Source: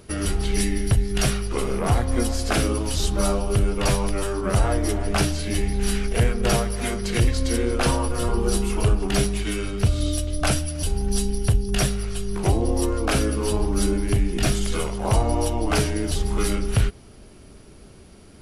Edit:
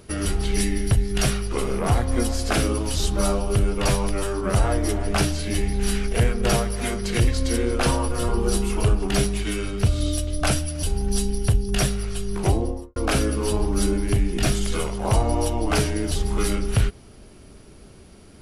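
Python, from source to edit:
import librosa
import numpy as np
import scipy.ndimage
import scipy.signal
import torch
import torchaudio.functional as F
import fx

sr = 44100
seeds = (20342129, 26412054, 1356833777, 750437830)

y = fx.studio_fade_out(x, sr, start_s=12.49, length_s=0.47)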